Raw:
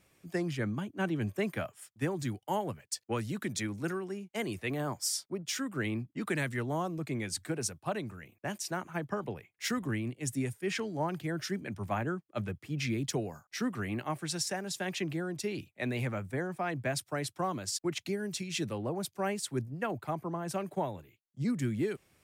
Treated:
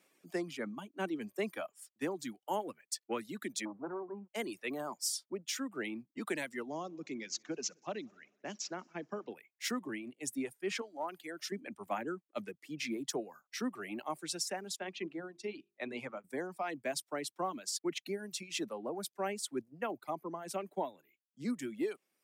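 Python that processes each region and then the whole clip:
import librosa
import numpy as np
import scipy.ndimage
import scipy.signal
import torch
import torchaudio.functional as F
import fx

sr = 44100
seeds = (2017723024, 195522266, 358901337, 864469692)

y = fx.chain(x, sr, fx.leveller(passes=3),
    fx.ladder_lowpass(hz=1300.0, resonance_pct=35), at=(3.65, 4.28))
y = fx.chain(y, sr, fx.peak_eq(hz=1000.0, db=-5.0, octaves=1.9),
    fx.echo_heads(ms=62, heads='first and third', feedback_pct=54, wet_db=-22),
    fx.resample_bad(factor=3, down='none', up='filtered'), at=(6.68, 9.32))
y = fx.chain(y, sr, fx.highpass(hz=570.0, slope=6),
    fx.clip_hard(threshold_db=-26.0), at=(10.81, 11.52))
y = fx.chain(y, sr, fx.bessel_lowpass(hz=4700.0, order=2),
    fx.hum_notches(base_hz=50, count=9),
    fx.upward_expand(threshold_db=-47.0, expansion=1.5), at=(14.76, 16.24))
y = scipy.signal.sosfilt(scipy.signal.butter(4, 220.0, 'highpass', fs=sr, output='sos'), y)
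y = fx.dereverb_blind(y, sr, rt60_s=1.3)
y = fx.dynamic_eq(y, sr, hz=1600.0, q=3.3, threshold_db=-52.0, ratio=4.0, max_db=-4)
y = y * librosa.db_to_amplitude(-2.0)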